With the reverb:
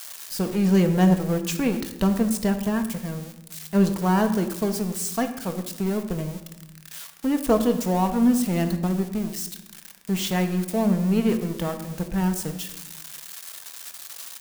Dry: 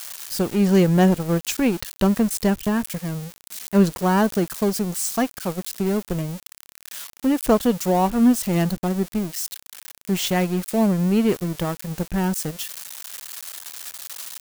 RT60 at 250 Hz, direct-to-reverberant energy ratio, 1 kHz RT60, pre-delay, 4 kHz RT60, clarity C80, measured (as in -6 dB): 1.3 s, 6.0 dB, 0.90 s, 4 ms, 0.60 s, 12.0 dB